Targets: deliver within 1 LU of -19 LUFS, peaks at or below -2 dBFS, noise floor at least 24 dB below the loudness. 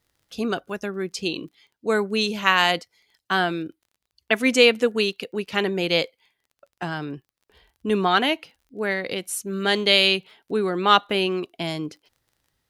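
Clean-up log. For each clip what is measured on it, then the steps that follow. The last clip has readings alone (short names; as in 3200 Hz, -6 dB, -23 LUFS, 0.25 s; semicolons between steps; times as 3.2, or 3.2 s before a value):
ticks 28/s; loudness -22.5 LUFS; peak -2.0 dBFS; loudness target -19.0 LUFS
-> de-click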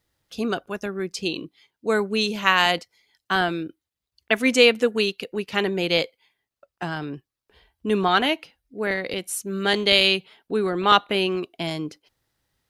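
ticks 0/s; loudness -22.5 LUFS; peak -2.0 dBFS; loudness target -19.0 LUFS
-> gain +3.5 dB; limiter -2 dBFS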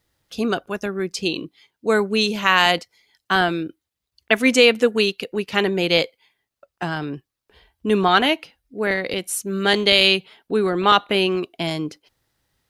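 loudness -19.5 LUFS; peak -2.0 dBFS; noise floor -83 dBFS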